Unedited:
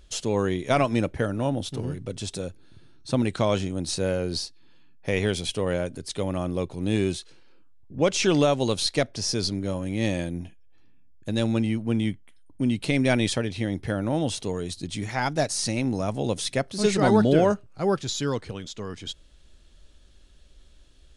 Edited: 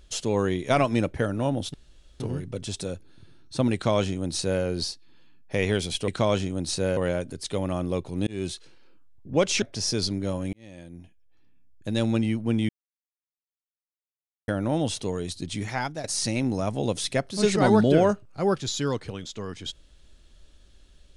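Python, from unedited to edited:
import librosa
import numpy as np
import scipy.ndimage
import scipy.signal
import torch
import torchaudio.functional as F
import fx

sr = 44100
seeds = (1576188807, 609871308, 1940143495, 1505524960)

y = fx.edit(x, sr, fx.insert_room_tone(at_s=1.74, length_s=0.46),
    fx.duplicate(start_s=3.28, length_s=0.89, to_s=5.62),
    fx.fade_in_span(start_s=6.92, length_s=0.26),
    fx.cut(start_s=8.27, length_s=0.76),
    fx.fade_in_span(start_s=9.94, length_s=1.53),
    fx.silence(start_s=12.1, length_s=1.79),
    fx.fade_out_to(start_s=15.1, length_s=0.35, floor_db=-14.5), tone=tone)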